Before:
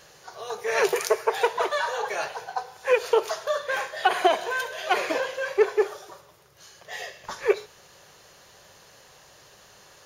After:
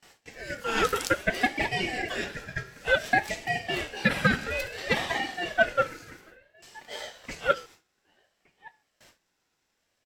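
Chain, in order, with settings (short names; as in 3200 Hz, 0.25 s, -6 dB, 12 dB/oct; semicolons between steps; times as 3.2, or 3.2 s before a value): gate with hold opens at -40 dBFS; outdoor echo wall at 200 m, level -24 dB; ring modulator with a swept carrier 1100 Hz, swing 20%, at 0.58 Hz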